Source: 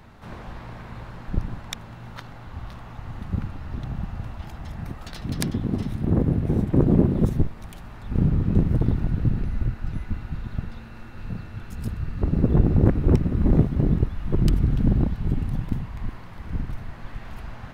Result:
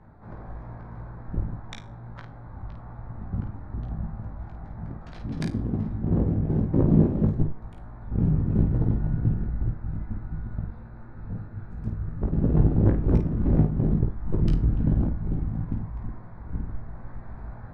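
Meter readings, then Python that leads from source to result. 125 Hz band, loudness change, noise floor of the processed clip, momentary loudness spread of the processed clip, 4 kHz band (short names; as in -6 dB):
-1.5 dB, -1.5 dB, -43 dBFS, 19 LU, under -10 dB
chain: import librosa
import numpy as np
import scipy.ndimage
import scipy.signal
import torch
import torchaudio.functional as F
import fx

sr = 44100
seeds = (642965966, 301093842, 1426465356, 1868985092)

y = fx.wiener(x, sr, points=15)
y = scipy.signal.sosfilt(scipy.signal.butter(2, 7200.0, 'lowpass', fs=sr, output='sos'), y)
y = fx.high_shelf(y, sr, hz=3700.0, db=-11.5)
y = fx.comb_fb(y, sr, f0_hz=52.0, decay_s=0.32, harmonics='all', damping=0.0, mix_pct=60)
y = fx.room_early_taps(y, sr, ms=(18, 51), db=(-5.0, -6.0))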